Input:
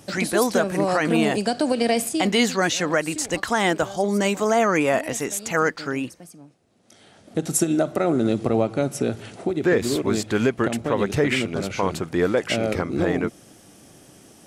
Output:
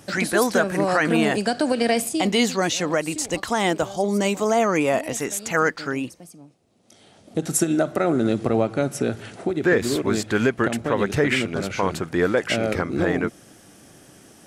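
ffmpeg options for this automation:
-af "asetnsamples=n=441:p=0,asendcmd='2 equalizer g -5;5.17 equalizer g 2;5.94 equalizer g -5.5;7.42 equalizer g 4.5',equalizer=f=1.6k:t=o:w=0.62:g=5"

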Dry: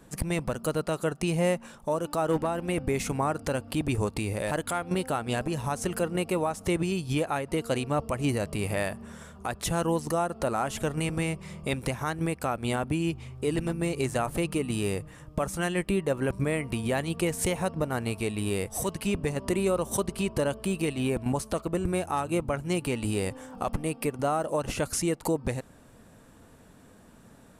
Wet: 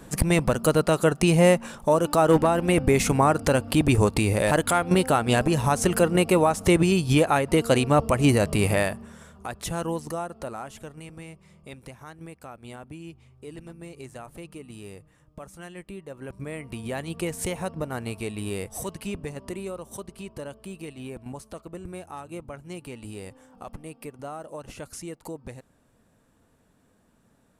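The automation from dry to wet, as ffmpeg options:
-af "volume=19dB,afade=t=out:st=8.66:d=0.44:silence=0.316228,afade=t=out:st=9.86:d=1.08:silence=0.281838,afade=t=in:st=16.11:d=1.13:silence=0.281838,afade=t=out:st=18.63:d=1.18:silence=0.398107"

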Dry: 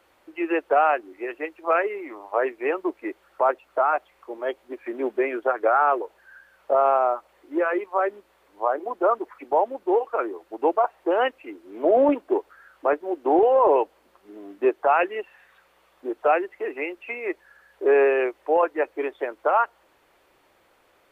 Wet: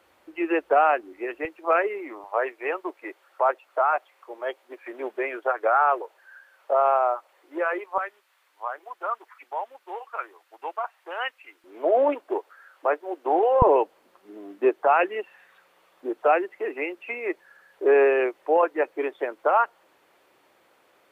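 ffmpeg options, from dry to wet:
-af "asetnsamples=n=441:p=0,asendcmd='1.45 highpass f 190;2.24 highpass f 520;7.98 highpass f 1300;11.64 highpass f 480;13.62 highpass f 140',highpass=50"

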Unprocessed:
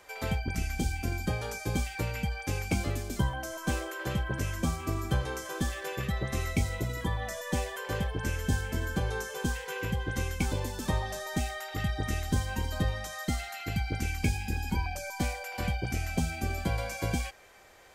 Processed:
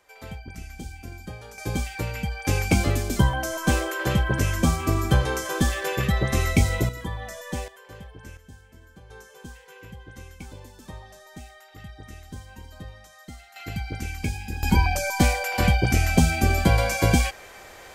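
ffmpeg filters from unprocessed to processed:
-af "asetnsamples=n=441:p=0,asendcmd='1.58 volume volume 3dB;2.45 volume volume 9dB;6.89 volume volume -0.5dB;7.68 volume volume -11dB;8.37 volume volume -18.5dB;9.1 volume volume -11dB;13.56 volume volume 0dB;14.63 volume volume 11.5dB',volume=-7dB"

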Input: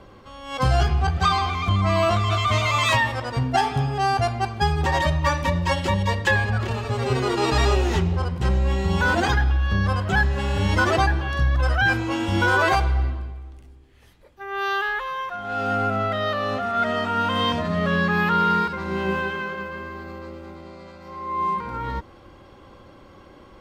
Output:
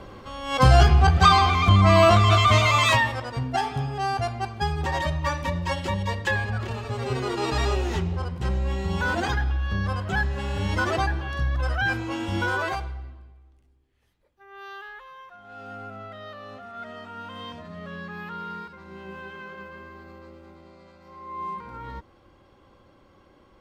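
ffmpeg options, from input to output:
-af "volume=11.5dB,afade=t=out:st=2.33:d=0.99:silence=0.334965,afade=t=out:st=12.35:d=0.66:silence=0.281838,afade=t=in:st=19.11:d=0.52:silence=0.446684"

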